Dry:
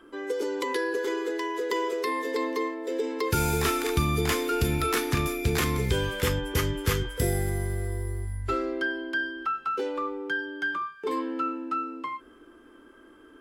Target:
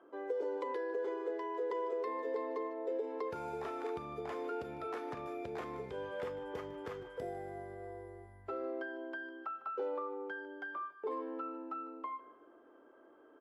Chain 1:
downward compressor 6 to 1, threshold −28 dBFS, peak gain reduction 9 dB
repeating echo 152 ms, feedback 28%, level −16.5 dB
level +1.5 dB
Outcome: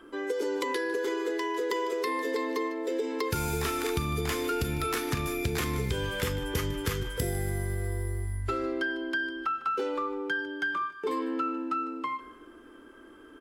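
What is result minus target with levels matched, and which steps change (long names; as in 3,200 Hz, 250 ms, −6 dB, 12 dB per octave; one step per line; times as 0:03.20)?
500 Hz band −3.5 dB
add after downward compressor: resonant band-pass 660 Hz, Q 2.4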